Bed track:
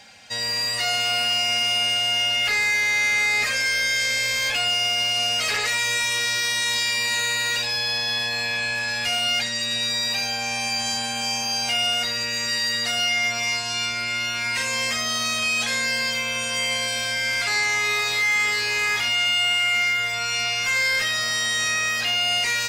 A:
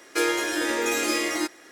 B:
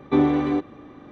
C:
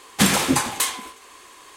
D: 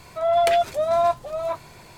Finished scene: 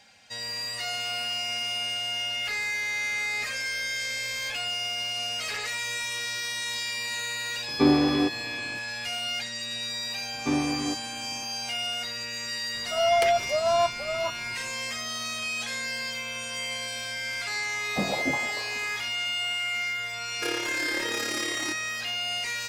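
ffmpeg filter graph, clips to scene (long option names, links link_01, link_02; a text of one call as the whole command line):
ffmpeg -i bed.wav -i cue0.wav -i cue1.wav -i cue2.wav -i cue3.wav -filter_complex "[2:a]asplit=2[link_01][link_02];[0:a]volume=-8.5dB[link_03];[link_02]equalizer=frequency=410:width=3.2:gain=-7[link_04];[3:a]lowpass=frequency=660:width_type=q:width=5.1[link_05];[1:a]tremolo=f=35:d=0.75[link_06];[link_01]atrim=end=1.11,asetpts=PTS-STARTPTS,volume=-1.5dB,afade=type=in:duration=0.004:curve=hsin,afade=type=out:start_time=1.106:duration=0.004:curve=hsin,adelay=7680[link_07];[link_04]atrim=end=1.11,asetpts=PTS-STARTPTS,volume=-6.5dB,afade=type=in:duration=0.004:curve=hsin,afade=type=out:start_time=1.106:duration=0.004:curve=hsin,adelay=455994S[link_08];[4:a]atrim=end=1.97,asetpts=PTS-STARTPTS,volume=-3.5dB,afade=type=in:duration=0.004:curve=hsin,afade=type=out:start_time=1.966:duration=0.004:curve=hsin,adelay=12750[link_09];[link_05]atrim=end=1.76,asetpts=PTS-STARTPTS,volume=-12dB,afade=type=in:duration=0.004:curve=hsin,afade=type=out:start_time=1.756:duration=0.004:curve=hsin,adelay=17770[link_10];[link_06]atrim=end=1.71,asetpts=PTS-STARTPTS,volume=-5dB,afade=type=in:duration=0.004:curve=hsin,afade=type=out:start_time=1.706:duration=0.004:curve=hsin,adelay=20260[link_11];[link_03][link_07][link_08][link_09][link_10][link_11]amix=inputs=6:normalize=0" out.wav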